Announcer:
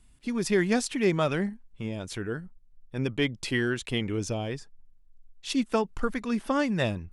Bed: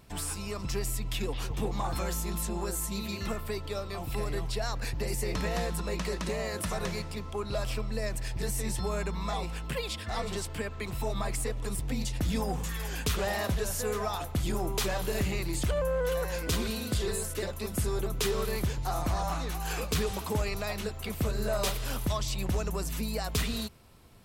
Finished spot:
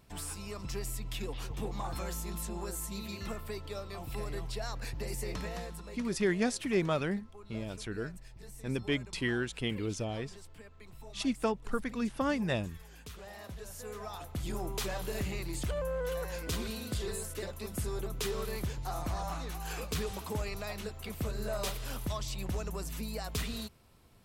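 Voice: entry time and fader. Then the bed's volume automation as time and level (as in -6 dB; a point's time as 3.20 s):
5.70 s, -5.0 dB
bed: 5.30 s -5.5 dB
6.28 s -18 dB
13.21 s -18 dB
14.57 s -5.5 dB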